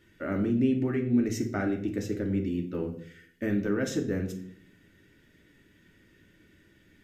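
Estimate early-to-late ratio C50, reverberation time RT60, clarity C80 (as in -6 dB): 10.0 dB, 0.55 s, 14.0 dB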